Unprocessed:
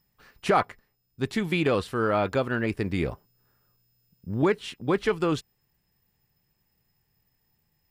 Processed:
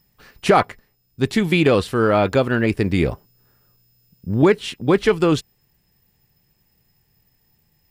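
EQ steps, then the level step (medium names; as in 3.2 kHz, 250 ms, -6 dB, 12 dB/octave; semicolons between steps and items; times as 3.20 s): peaking EQ 1.2 kHz -3.5 dB 1.4 oct; +9.0 dB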